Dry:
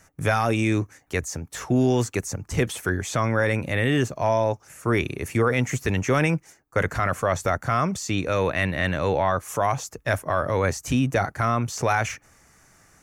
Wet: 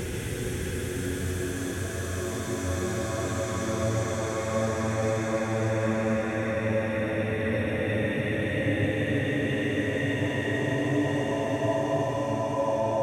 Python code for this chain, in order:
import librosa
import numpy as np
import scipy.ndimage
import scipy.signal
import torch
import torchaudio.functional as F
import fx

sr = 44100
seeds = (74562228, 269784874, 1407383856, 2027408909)

p1 = fx.peak_eq(x, sr, hz=120.0, db=-13.0, octaves=1.4)
p2 = fx.hpss(p1, sr, part='percussive', gain_db=-15)
p3 = fx.low_shelf(p2, sr, hz=320.0, db=9.0)
p4 = fx.over_compress(p3, sr, threshold_db=-30.0, ratio=-1.0)
p5 = p3 + F.gain(torch.from_numpy(p4), 2.5).numpy()
p6 = fx.paulstretch(p5, sr, seeds[0], factor=8.0, window_s=1.0, from_s=2.66)
p7 = p6 + fx.echo_single(p6, sr, ms=135, db=-4.5, dry=0)
y = F.gain(torch.from_numpy(p7), -7.5).numpy()